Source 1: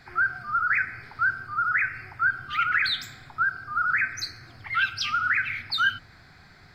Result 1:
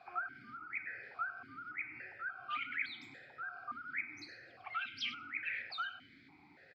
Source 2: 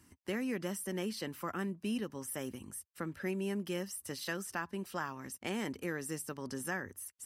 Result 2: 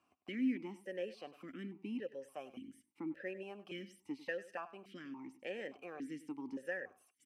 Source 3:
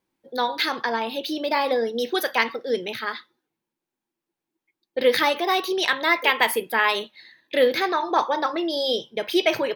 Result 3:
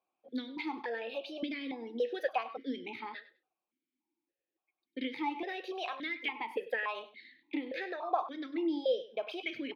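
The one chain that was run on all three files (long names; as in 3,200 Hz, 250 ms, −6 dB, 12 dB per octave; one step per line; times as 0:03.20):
downward compressor, threshold −27 dBFS
on a send: repeating echo 99 ms, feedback 19%, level −16 dB
on the sum: formant filter that steps through the vowels 3.5 Hz
level +6 dB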